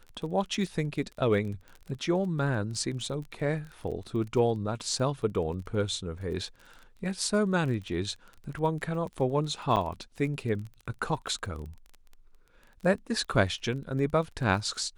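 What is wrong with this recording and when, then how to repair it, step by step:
surface crackle 22 per second −37 dBFS
0:09.76–0:09.77: drop-out 8.3 ms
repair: click removal
repair the gap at 0:09.76, 8.3 ms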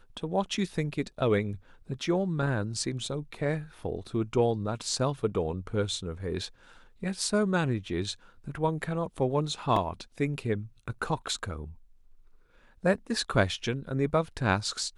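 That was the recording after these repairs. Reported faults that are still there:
none of them is left

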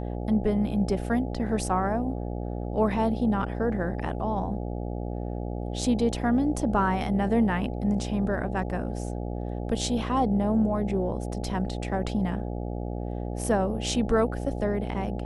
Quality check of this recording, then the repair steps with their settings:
mains buzz 60 Hz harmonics 14 −32 dBFS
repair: hum removal 60 Hz, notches 14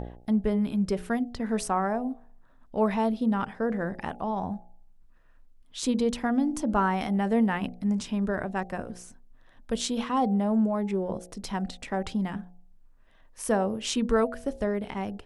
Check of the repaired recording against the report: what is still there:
none of them is left

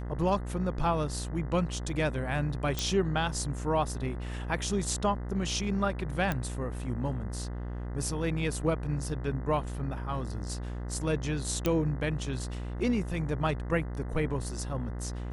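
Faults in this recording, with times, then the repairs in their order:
mains buzz 60 Hz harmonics 34 −36 dBFS
0:02.79: click
0:06.32: click −16 dBFS
0:11.66: click −13 dBFS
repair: click removal
hum removal 60 Hz, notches 34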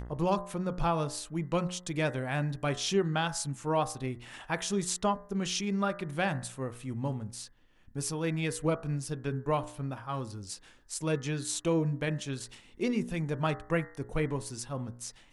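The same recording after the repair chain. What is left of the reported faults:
none of them is left

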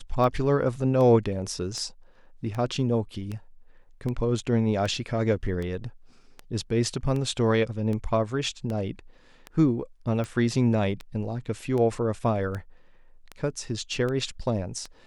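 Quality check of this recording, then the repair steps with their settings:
scratch tick 78 rpm −21 dBFS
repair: click removal

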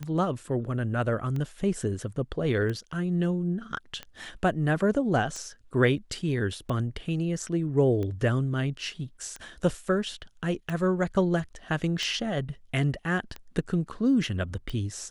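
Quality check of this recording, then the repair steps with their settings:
scratch tick 45 rpm −22 dBFS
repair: click removal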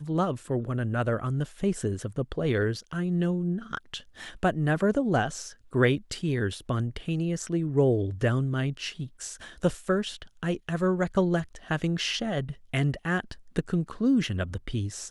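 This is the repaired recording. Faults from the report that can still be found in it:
none of them is left

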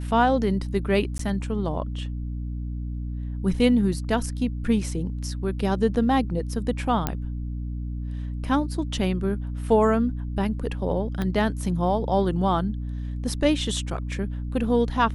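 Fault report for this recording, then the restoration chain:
mains hum 60 Hz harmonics 5 −30 dBFS
0:01.18–0:01.19: drop-out 13 ms
0:07.07: click −9 dBFS
0:11.22: click −15 dBFS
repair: click removal
hum removal 60 Hz, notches 5
repair the gap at 0:01.18, 13 ms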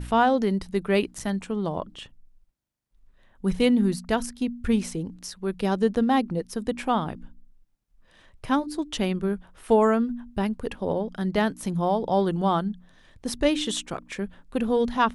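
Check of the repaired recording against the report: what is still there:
0:11.22: click

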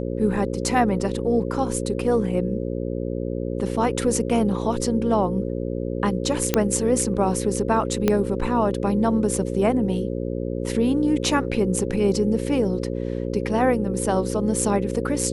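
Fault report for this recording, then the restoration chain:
mains buzz 60 Hz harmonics 9 −27 dBFS
0:06.54: click −3 dBFS
0:08.08: click −6 dBFS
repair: click removal
hum removal 60 Hz, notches 9

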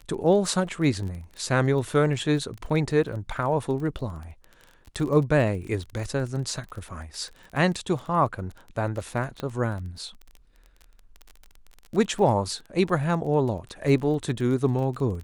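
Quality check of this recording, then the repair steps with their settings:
surface crackle 23 per second −33 dBFS
0:09.40: click −19 dBFS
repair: click removal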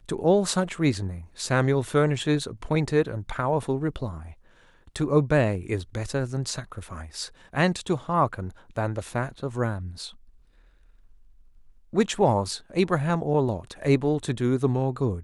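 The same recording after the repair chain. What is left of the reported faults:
0:09.40: click

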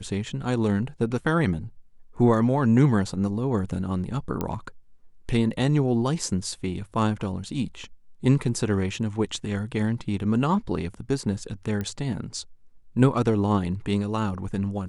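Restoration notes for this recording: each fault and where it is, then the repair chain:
0:04.41: click −14 dBFS
0:11.81: click −18 dBFS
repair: click removal

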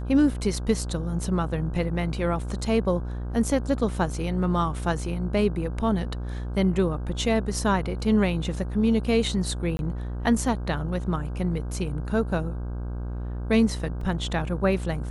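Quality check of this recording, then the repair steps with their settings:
mains buzz 60 Hz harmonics 27 −31 dBFS
0:09.77–0:09.79: drop-out 21 ms
0:14.01: drop-out 3 ms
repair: hum removal 60 Hz, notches 27
repair the gap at 0:09.77, 21 ms
repair the gap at 0:14.01, 3 ms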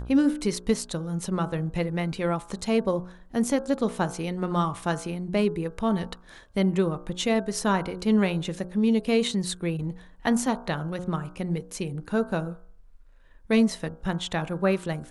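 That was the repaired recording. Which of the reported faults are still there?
none of them is left

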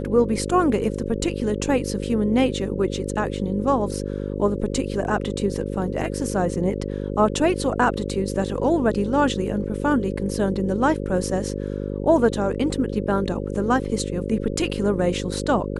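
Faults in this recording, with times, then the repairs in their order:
mains buzz 50 Hz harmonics 11 −28 dBFS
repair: hum removal 50 Hz, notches 11

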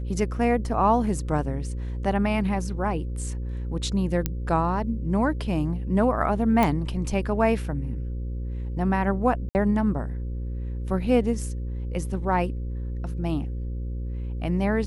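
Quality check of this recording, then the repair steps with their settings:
mains buzz 60 Hz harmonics 9 −30 dBFS
0:04.26: click −10 dBFS
0:06.63: click
0:09.49–0:09.55: drop-out 59 ms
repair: click removal
hum removal 60 Hz, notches 9
repair the gap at 0:09.49, 59 ms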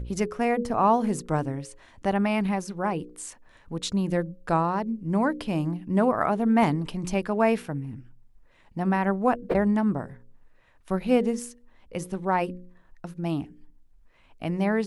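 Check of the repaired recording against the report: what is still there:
none of them is left

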